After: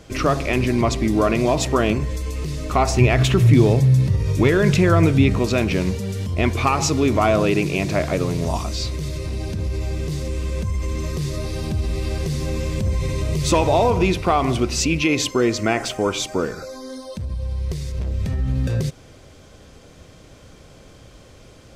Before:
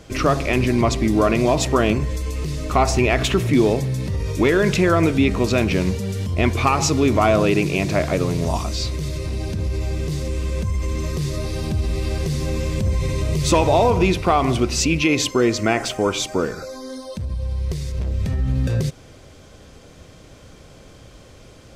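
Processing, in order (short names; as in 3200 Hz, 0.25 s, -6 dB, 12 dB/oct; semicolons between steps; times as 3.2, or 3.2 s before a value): 2.98–5.39 bell 120 Hz +12 dB 0.71 oct; gain -1 dB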